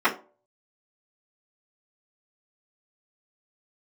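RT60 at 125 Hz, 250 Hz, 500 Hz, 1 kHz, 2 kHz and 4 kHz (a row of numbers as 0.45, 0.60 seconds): 0.35, 0.35, 0.45, 0.35, 0.25, 0.20 seconds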